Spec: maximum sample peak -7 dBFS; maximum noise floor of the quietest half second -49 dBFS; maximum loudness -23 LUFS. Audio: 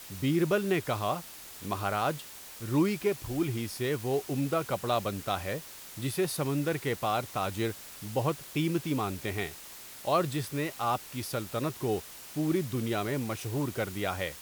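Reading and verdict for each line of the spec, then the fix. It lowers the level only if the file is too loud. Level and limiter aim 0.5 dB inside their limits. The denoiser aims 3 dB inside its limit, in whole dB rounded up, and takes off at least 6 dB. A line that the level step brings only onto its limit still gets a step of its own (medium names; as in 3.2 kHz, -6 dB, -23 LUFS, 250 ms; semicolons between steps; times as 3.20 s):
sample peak -14.0 dBFS: pass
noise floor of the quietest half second -47 dBFS: fail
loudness -31.5 LUFS: pass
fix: noise reduction 6 dB, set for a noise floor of -47 dBFS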